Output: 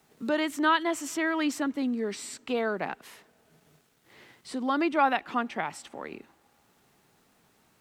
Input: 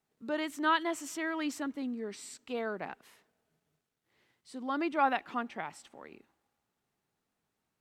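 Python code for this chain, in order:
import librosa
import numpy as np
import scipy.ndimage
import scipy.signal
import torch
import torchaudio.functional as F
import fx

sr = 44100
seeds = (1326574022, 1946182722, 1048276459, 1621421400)

y = fx.band_squash(x, sr, depth_pct=40)
y = F.gain(torch.from_numpy(y), 6.5).numpy()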